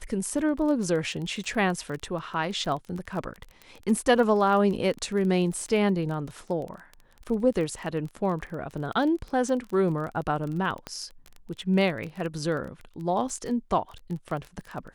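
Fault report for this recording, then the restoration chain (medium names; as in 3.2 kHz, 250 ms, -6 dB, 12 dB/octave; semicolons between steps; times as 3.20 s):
crackle 22 per s -32 dBFS
10.87 s: pop -19 dBFS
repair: de-click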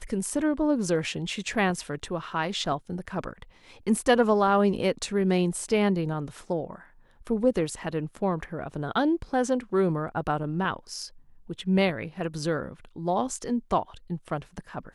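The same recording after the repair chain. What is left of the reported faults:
nothing left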